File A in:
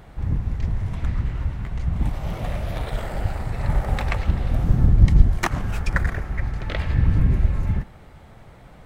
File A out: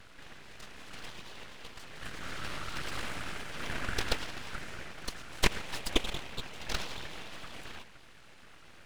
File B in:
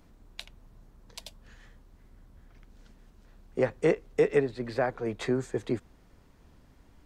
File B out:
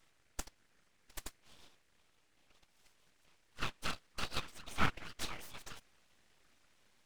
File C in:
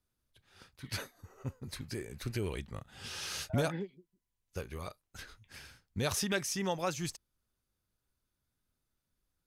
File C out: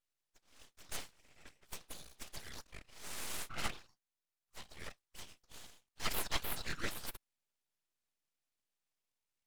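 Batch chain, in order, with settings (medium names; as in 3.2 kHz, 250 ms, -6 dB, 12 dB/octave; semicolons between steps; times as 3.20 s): FFT band-pass 580–10000 Hz; whisper effect; full-wave rectifier; trim +1 dB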